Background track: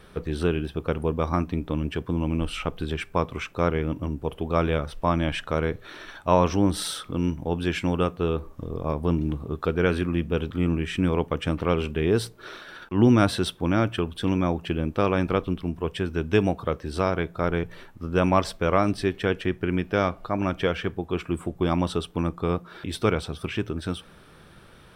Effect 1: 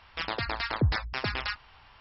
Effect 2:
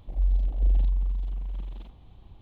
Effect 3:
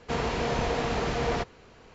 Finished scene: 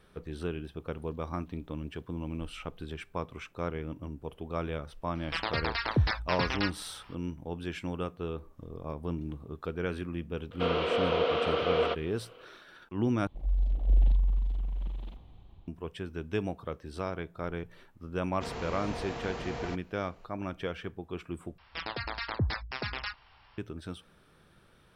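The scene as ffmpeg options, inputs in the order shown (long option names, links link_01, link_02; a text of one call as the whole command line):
ffmpeg -i bed.wav -i cue0.wav -i cue1.wav -i cue2.wav -filter_complex "[2:a]asplit=2[link_01][link_02];[1:a]asplit=2[link_03][link_04];[3:a]asplit=2[link_05][link_06];[0:a]volume=-11dB[link_07];[link_01]aderivative[link_08];[link_05]highpass=360,equalizer=frequency=510:width_type=q:width=4:gain=9,equalizer=frequency=860:width_type=q:width=4:gain=-8,equalizer=frequency=1300:width_type=q:width=4:gain=7,equalizer=frequency=1800:width_type=q:width=4:gain=-9,equalizer=frequency=3100:width_type=q:width=4:gain=8,lowpass=frequency=3700:width=0.5412,lowpass=frequency=3700:width=1.3066[link_09];[link_02]dynaudnorm=framelen=130:gausssize=7:maxgain=5dB[link_10];[link_07]asplit=3[link_11][link_12][link_13];[link_11]atrim=end=13.274[link_14];[link_10]atrim=end=2.41,asetpts=PTS-STARTPTS,volume=-5.5dB[link_15];[link_12]atrim=start=15.676:end=21.584[link_16];[link_04]atrim=end=2,asetpts=PTS-STARTPTS,volume=-4.5dB[link_17];[link_13]atrim=start=23.576[link_18];[link_08]atrim=end=2.41,asetpts=PTS-STARTPTS,volume=-7.5dB,afade=type=in:duration=0.004:curve=hsin,afade=type=out:start_time=2.406:duration=0.004:curve=hsin,adelay=720[link_19];[link_03]atrim=end=2,asetpts=PTS-STARTPTS,volume=-0.5dB,afade=type=in:duration=0.004:curve=hsin,afade=type=out:start_time=1.996:duration=0.004:curve=hsin,adelay=5150[link_20];[link_09]atrim=end=1.94,asetpts=PTS-STARTPTS,volume=-1dB,afade=type=in:duration=0.004:curve=hsin,afade=type=out:start_time=1.936:duration=0.004:curve=hsin,adelay=10510[link_21];[link_06]atrim=end=1.94,asetpts=PTS-STARTPTS,volume=-10dB,afade=type=in:duration=0.004:curve=hsin,afade=type=out:start_time=1.936:duration=0.004:curve=hsin,adelay=18320[link_22];[link_14][link_15]acrossfade=duration=0.004:curve1=hsin:curve2=hsin[link_23];[link_23][link_16]acrossfade=duration=0.004:curve1=hsin:curve2=hsin[link_24];[link_24][link_17]acrossfade=duration=0.004:curve1=hsin:curve2=hsin[link_25];[link_25][link_18]acrossfade=duration=0.004:curve1=hsin:curve2=hsin[link_26];[link_26][link_19][link_20][link_21][link_22]amix=inputs=5:normalize=0" out.wav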